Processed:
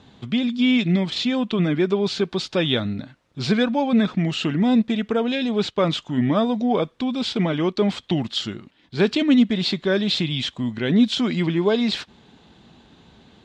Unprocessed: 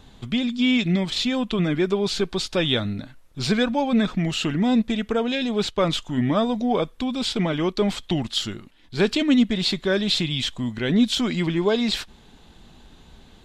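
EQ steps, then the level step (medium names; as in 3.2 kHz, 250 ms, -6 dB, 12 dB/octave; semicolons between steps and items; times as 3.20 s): band-pass 110–5500 Hz; bass shelf 400 Hz +3 dB; 0.0 dB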